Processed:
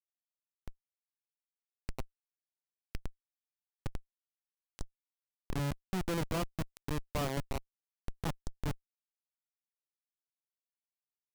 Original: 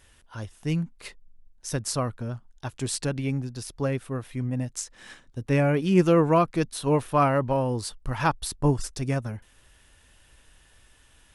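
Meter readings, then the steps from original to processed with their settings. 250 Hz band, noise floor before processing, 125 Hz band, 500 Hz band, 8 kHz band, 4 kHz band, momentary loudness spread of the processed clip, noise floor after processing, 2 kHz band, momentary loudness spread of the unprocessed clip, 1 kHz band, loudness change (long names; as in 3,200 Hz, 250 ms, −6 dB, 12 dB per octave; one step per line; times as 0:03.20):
−16.0 dB, −59 dBFS, −14.5 dB, −18.0 dB, −16.5 dB, −10.5 dB, 17 LU, below −85 dBFS, −13.0 dB, 18 LU, −17.0 dB, −13.0 dB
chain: in parallel at −3 dB: output level in coarse steps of 17 dB
on the sum: comparator with hysteresis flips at −16 dBFS
level −7 dB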